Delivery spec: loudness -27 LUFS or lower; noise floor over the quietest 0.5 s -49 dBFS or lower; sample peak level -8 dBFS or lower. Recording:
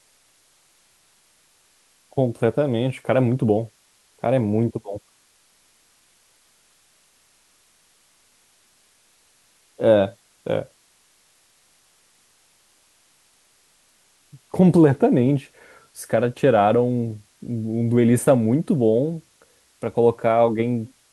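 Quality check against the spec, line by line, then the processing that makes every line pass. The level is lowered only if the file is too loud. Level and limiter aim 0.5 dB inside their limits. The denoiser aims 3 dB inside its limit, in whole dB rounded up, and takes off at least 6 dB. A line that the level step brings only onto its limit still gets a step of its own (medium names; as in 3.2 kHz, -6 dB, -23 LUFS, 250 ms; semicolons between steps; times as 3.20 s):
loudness -20.5 LUFS: fail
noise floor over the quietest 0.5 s -60 dBFS: pass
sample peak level -3.0 dBFS: fail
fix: trim -7 dB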